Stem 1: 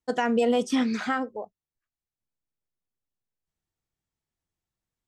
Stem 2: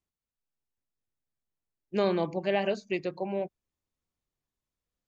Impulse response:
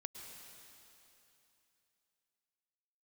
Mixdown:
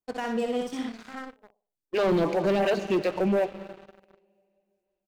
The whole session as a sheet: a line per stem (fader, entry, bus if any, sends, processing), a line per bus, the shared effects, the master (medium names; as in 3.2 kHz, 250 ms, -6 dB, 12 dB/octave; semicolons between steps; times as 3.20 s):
-18.0 dB, 0.00 s, no send, echo send -5 dB, auto duck -22 dB, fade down 1.50 s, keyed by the second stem
+2.5 dB, 0.00 s, send -7.5 dB, no echo send, lamp-driven phase shifter 2.7 Hz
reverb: on, RT60 3.0 s, pre-delay 98 ms
echo: feedback delay 61 ms, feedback 36%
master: waveshaping leveller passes 3; peak limiter -18.5 dBFS, peak gain reduction 5.5 dB